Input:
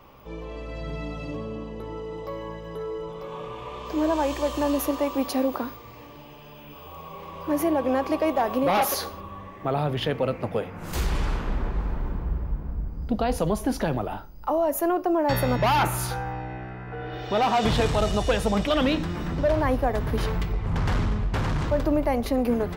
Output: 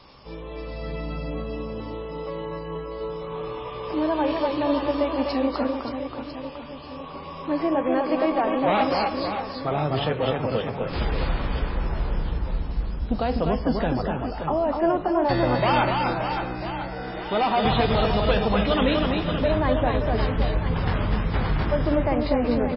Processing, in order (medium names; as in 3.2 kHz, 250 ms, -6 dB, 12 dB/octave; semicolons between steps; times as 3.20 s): added noise violet -39 dBFS; reverse bouncing-ball echo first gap 250 ms, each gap 1.3×, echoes 5; MP3 16 kbps 12 kHz